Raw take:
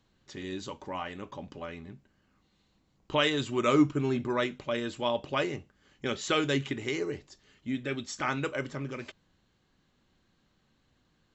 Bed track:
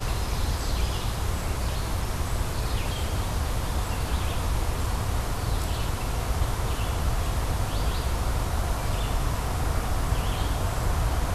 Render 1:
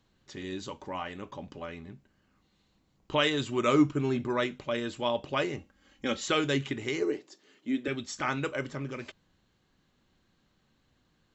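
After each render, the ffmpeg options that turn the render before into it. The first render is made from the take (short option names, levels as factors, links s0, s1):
-filter_complex "[0:a]asettb=1/sr,asplit=3[s0][s1][s2];[s0]atrim=end=5.584[s3];[s1]atrim=start=5.58:end=6.26,asetpts=PTS-STARTPTS,afade=t=in:d=0.004:c=qsin,afade=t=out:st=0.676:d=0.004:c=qsin,aecho=1:1:3.7:0.65,atrim=end_sample=29988[s4];[s2]atrim=start=6.256[s5];[s3][s4]acrossfade=d=0.004:c1=hsin:c2=qsin[s6];[s6][s5]acrossfade=d=0.004:c1=qsin:c2=hsin,asettb=1/sr,asplit=3[s7][s8][s9];[s7]atrim=end=7.024[s10];[s8]atrim=start=7.02:end=7.88,asetpts=PTS-STARTPTS,afade=t=in:d=0.004:c=qsin,afade=t=out:st=0.856:d=0.004:c=qsin,highpass=f=310:t=q:w=2[s11];[s9]atrim=start=7.876[s12];[s10][s11]acrossfade=d=0.004:c1=hsin:c2=qsin[s13];[s13][s12]acrossfade=d=0.004:c1=qsin:c2=hsin"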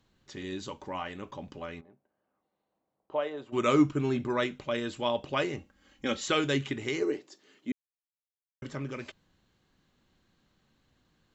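-filter_complex "[0:a]asplit=3[s0][s1][s2];[s0]afade=t=out:st=1.8:d=0.02[s3];[s1]bandpass=f=650:t=q:w=2,afade=t=in:st=1.8:d=0.02,afade=t=out:st=3.52:d=0.02[s4];[s2]afade=t=in:st=3.52:d=0.02[s5];[s3][s4][s5]amix=inputs=3:normalize=0,asplit=3[s6][s7][s8];[s6]atrim=end=7.72,asetpts=PTS-STARTPTS,afade=t=out:st=7.716:d=0.004:c=hsin[s9];[s7]atrim=start=7.72:end=8.62,asetpts=PTS-STARTPTS,volume=0[s10];[s8]atrim=start=8.62,asetpts=PTS-STARTPTS,afade=t=in:d=0.004:c=hsin[s11];[s9][s10][s11]concat=n=3:v=0:a=1"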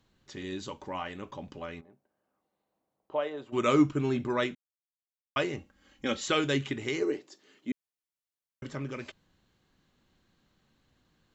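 -filter_complex "[0:a]asplit=3[s0][s1][s2];[s0]atrim=end=4.55,asetpts=PTS-STARTPTS,afade=t=out:st=4.546:d=0.004:c=hsin[s3];[s1]atrim=start=4.55:end=5.36,asetpts=PTS-STARTPTS,volume=0[s4];[s2]atrim=start=5.36,asetpts=PTS-STARTPTS,afade=t=in:d=0.004:c=hsin[s5];[s3][s4][s5]concat=n=3:v=0:a=1"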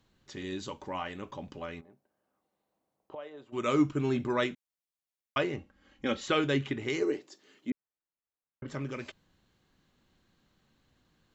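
-filter_complex "[0:a]asettb=1/sr,asplit=3[s0][s1][s2];[s0]atrim=end=5.384[s3];[s1]atrim=start=5.38:end=6.9,asetpts=PTS-STARTPTS,afade=t=in:d=0.004:c=qsin,afade=t=out:st=1.516:d=0.004:c=qsin,aemphasis=mode=reproduction:type=50fm[s4];[s2]atrim=start=6.896[s5];[s3][s4]acrossfade=d=0.004:c1=hsin:c2=qsin[s6];[s6][s5]acrossfade=d=0.004:c1=qsin:c2=hsin,asettb=1/sr,asplit=3[s7][s8][s9];[s7]atrim=end=7.704[s10];[s8]atrim=start=7.7:end=8.68,asetpts=PTS-STARTPTS,afade=t=in:d=0.004:c=qsin,afade=t=out:st=0.976:d=0.004:c=qsin,lowpass=1700[s11];[s9]atrim=start=8.676[s12];[s10][s11]acrossfade=d=0.004:c1=hsin:c2=qsin[s13];[s13][s12]acrossfade=d=0.004:c1=qsin:c2=hsin,asplit=2[s14][s15];[s14]atrim=end=3.15,asetpts=PTS-STARTPTS,afade=t=out:st=3.146:d=0.004:c=hsin:silence=0.199526[s16];[s15]atrim=start=3.15,asetpts=PTS-STARTPTS,afade=t=in:d=0.98:silence=0.199526[s17];[s16][s17]concat=n=2:v=0:a=1"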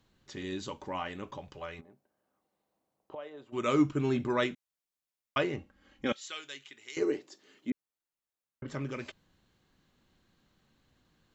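-filter_complex "[0:a]asettb=1/sr,asplit=3[s0][s1][s2];[s0]atrim=end=1.384[s3];[s1]atrim=start=1.38:end=1.79,asetpts=PTS-STARTPTS,afade=t=in:d=0.004:c=qsin,afade=t=out:st=0.406:d=0.004:c=qsin,equalizer=f=240:t=o:w=0.77:g=-14.5[s4];[s2]atrim=start=1.786[s5];[s3][s4]acrossfade=d=0.004:c1=hsin:c2=qsin[s6];[s6][s5]acrossfade=d=0.004:c1=qsin:c2=hsin,asettb=1/sr,asplit=3[s7][s8][s9];[s7]atrim=end=6.124[s10];[s8]atrim=start=6.12:end=6.97,asetpts=PTS-STARTPTS,afade=t=in:d=0.004:c=qsin,afade=t=out:st=0.846:d=0.004:c=qsin,aderivative[s11];[s9]atrim=start=6.966[s12];[s10][s11]acrossfade=d=0.004:c1=hsin:c2=qsin[s13];[s13][s12]acrossfade=d=0.004:c1=qsin:c2=hsin"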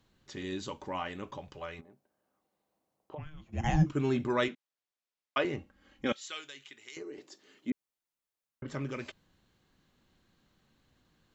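-filter_complex "[0:a]asplit=3[s0][s1][s2];[s0]afade=t=out:st=3.17:d=0.02[s3];[s1]afreqshift=-460,afade=t=in:st=3.17:d=0.02,afade=t=out:st=3.85:d=0.02[s4];[s2]afade=t=in:st=3.85:d=0.02[s5];[s3][s4][s5]amix=inputs=3:normalize=0,asettb=1/sr,asplit=3[s6][s7][s8];[s6]atrim=end=4.484[s9];[s7]atrim=start=4.48:end=5.45,asetpts=PTS-STARTPTS,afade=t=in:d=0.004:c=qsin,afade=t=out:st=0.966:d=0.004:c=qsin,highpass=260,lowpass=5300[s10];[s8]atrim=start=5.446[s11];[s9][s10]acrossfade=d=0.004:c1=hsin:c2=qsin[s12];[s12][s11]acrossfade=d=0.004:c1=qsin:c2=hsin,asettb=1/sr,asplit=3[s13][s14][s15];[s13]atrim=end=6.454[s16];[s14]atrim=start=6.45:end=7.18,asetpts=PTS-STARTPTS,afade=t=in:d=0.004:c=qsin,afade=t=out:st=0.726:d=0.004:c=qsin,acompressor=threshold=0.00794:ratio=4:attack=3.2:release=140:knee=1:detection=peak[s17];[s15]atrim=start=7.176[s18];[s16][s17]acrossfade=d=0.004:c1=hsin:c2=qsin[s19];[s19][s18]acrossfade=d=0.004:c1=qsin:c2=hsin"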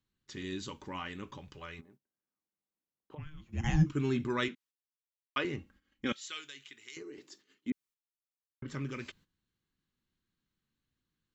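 -af "agate=range=0.178:threshold=0.00112:ratio=16:detection=peak,equalizer=f=660:t=o:w=0.88:g=-12"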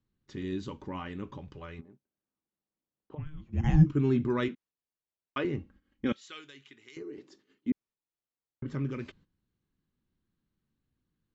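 -af "lowpass=6200,tiltshelf=f=1100:g=6"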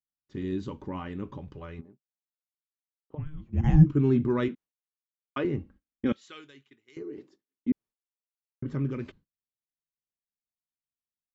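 -af "agate=range=0.0224:threshold=0.00398:ratio=3:detection=peak,tiltshelf=f=1300:g=3.5"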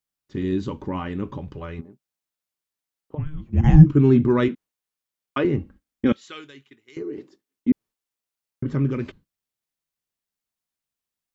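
-af "volume=2.37,alimiter=limit=0.891:level=0:latency=1"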